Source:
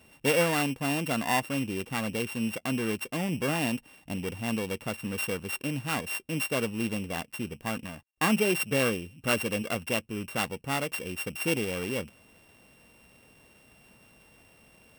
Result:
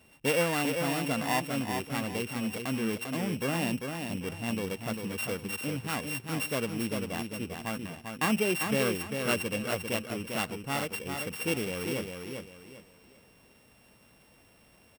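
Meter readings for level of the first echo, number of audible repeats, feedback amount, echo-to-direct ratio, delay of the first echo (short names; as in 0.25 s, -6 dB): -5.5 dB, 3, 30%, -5.0 dB, 0.396 s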